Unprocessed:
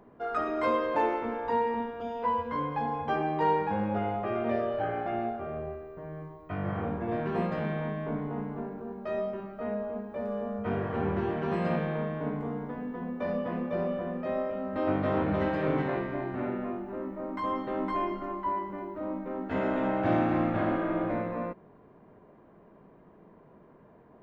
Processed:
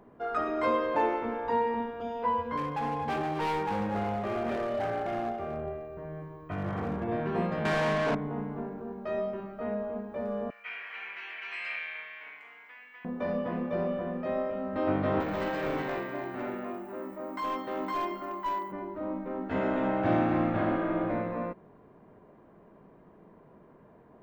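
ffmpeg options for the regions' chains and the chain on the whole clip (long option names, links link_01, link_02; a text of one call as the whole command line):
ffmpeg -i in.wav -filter_complex "[0:a]asettb=1/sr,asplit=3[link_01][link_02][link_03];[link_01]atrim=end=2.574[link_04];[link_02]atrim=start=2.57:end=7.04,asetpts=PTS-STARTPTS,afade=type=in:duration=0.004:curve=qsin,afade=type=out:start_time=4.466:duration=0.004:curve=qsin,asoftclip=type=hard:threshold=-28dB,aecho=1:1:252:0.316,atrim=end_sample=197127[link_05];[link_03]atrim=start=7.036[link_06];[link_04][link_05]acrossfade=duration=0.004:curve1=hsin:curve2=qsin[link_07];[link_07][link_06]acrossfade=duration=0.004:curve1=qsin:curve2=hsin,asettb=1/sr,asplit=3[link_08][link_09][link_10];[link_08]atrim=end=7.654[link_11];[link_09]atrim=start=7.65:end=8.15,asetpts=PTS-STARTPTS,afade=type=in:duration=0.004:curve=qsin,afade=type=out:start_time=0.496:duration=0.004:curve=qsin,highshelf=frequency=2900:gain=8,asplit=2[link_12][link_13];[link_13]highpass=frequency=720:poles=1,volume=26dB,asoftclip=type=tanh:threshold=-20dB[link_14];[link_12][link_14]amix=inputs=2:normalize=0,lowpass=frequency=2900:poles=1,volume=-6dB,adynamicsmooth=sensitivity=4.5:basefreq=3100[link_15];[link_10]atrim=start=8.146[link_16];[link_11][link_15]acrossfade=duration=0.004:curve1=hsin:curve2=qsin[link_17];[link_17][link_16]acrossfade=duration=0.004:curve1=qsin:curve2=hsin,asettb=1/sr,asplit=3[link_18][link_19][link_20];[link_18]atrim=end=10.504[link_21];[link_19]atrim=start=10.5:end=13.05,asetpts=PTS-STARTPTS,afade=type=in:duration=0.004:curve=qsin,afade=type=out:start_time=2.546:duration=0.004:curve=qsin,highpass=frequency=2300:width_type=q:width=4.7,bandreject=frequency=3600:width=16[link_22];[link_20]atrim=start=13.046[link_23];[link_21][link_22]acrossfade=duration=0.004:curve1=hsin:curve2=qsin[link_24];[link_24][link_23]acrossfade=duration=0.004:curve1=qsin:curve2=hsin,asettb=1/sr,asplit=3[link_25][link_26][link_27];[link_25]atrim=end=15.204[link_28];[link_26]atrim=start=15.2:end=18.72,asetpts=PTS-STARTPTS,afade=type=in:duration=0.004:curve=qsin,afade=type=out:start_time=3.516:duration=0.004:curve=qsin,aemphasis=mode=production:type=bsi,aeval=exprs='clip(val(0),-1,0.0355)':channel_layout=same[link_29];[link_27]atrim=start=18.716[link_30];[link_28][link_29]acrossfade=duration=0.004:curve1=hsin:curve2=qsin[link_31];[link_31][link_30]acrossfade=duration=0.004:curve1=qsin:curve2=hsin" out.wav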